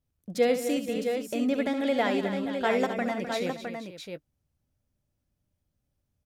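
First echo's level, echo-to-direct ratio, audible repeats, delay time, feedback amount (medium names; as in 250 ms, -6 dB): -10.5 dB, -3.5 dB, 5, 68 ms, no regular repeats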